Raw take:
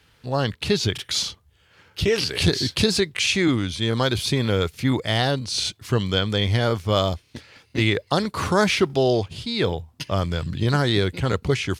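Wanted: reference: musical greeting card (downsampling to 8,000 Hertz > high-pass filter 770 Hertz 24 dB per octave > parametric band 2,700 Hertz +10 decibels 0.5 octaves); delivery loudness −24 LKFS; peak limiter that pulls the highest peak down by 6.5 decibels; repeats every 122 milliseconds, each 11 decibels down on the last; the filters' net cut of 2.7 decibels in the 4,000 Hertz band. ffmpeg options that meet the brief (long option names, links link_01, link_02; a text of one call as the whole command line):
ffmpeg -i in.wav -af "equalizer=frequency=4000:width_type=o:gain=-9,alimiter=limit=-14dB:level=0:latency=1,aecho=1:1:122|244|366:0.282|0.0789|0.0221,aresample=8000,aresample=44100,highpass=frequency=770:width=0.5412,highpass=frequency=770:width=1.3066,equalizer=frequency=2700:width_type=o:width=0.5:gain=10,volume=4.5dB" out.wav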